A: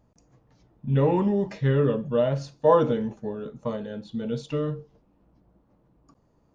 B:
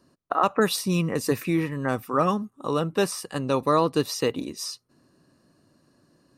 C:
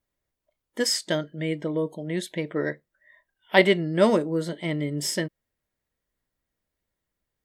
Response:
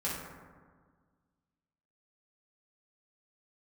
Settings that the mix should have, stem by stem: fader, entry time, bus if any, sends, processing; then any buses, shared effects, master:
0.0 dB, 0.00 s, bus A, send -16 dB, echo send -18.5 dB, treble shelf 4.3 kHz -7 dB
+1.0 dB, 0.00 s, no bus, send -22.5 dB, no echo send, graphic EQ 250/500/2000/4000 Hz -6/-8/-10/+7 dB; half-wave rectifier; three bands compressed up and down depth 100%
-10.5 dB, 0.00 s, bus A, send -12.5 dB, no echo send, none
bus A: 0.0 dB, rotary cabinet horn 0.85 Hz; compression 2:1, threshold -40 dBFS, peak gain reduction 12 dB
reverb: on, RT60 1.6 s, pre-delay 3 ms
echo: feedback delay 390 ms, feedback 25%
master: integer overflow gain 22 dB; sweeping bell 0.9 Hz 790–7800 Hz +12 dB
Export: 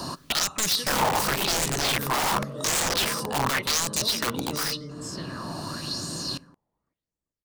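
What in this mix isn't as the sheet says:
stem B: missing half-wave rectifier; stem C: send off

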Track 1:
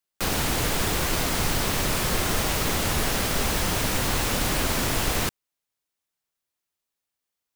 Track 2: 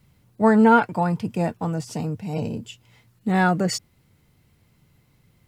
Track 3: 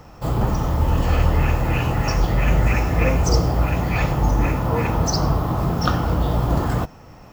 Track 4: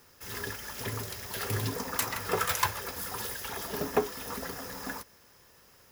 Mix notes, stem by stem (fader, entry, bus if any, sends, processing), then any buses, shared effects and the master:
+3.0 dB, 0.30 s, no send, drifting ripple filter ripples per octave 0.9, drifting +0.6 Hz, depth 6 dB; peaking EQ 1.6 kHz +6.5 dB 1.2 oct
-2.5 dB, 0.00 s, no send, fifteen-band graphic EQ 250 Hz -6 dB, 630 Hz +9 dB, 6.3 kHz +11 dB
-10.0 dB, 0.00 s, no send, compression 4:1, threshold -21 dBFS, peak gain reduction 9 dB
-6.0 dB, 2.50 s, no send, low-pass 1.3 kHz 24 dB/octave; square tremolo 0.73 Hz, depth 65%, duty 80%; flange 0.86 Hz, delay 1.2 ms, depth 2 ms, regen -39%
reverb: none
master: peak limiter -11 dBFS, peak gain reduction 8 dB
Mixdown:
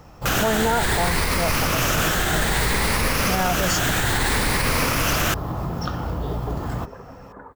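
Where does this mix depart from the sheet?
stem 1: entry 0.30 s -> 0.05 s; stem 3 -10.0 dB -> -2.5 dB; stem 4 -6.0 dB -> +4.0 dB

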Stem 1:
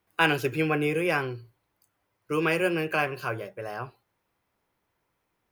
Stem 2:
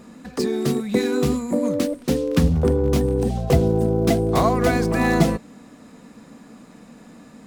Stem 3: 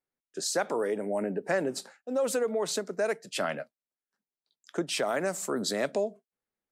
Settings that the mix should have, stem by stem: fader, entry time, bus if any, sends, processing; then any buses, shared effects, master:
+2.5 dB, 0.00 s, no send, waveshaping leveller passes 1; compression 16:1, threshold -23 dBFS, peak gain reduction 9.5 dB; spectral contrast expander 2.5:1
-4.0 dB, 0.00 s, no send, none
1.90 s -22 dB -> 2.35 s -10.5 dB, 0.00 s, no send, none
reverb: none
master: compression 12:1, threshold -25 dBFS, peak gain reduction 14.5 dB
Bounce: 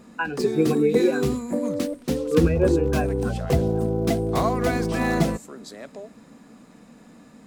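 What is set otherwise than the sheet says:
stem 1: missing waveshaping leveller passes 1; master: missing compression 12:1, threshold -25 dBFS, peak gain reduction 14.5 dB

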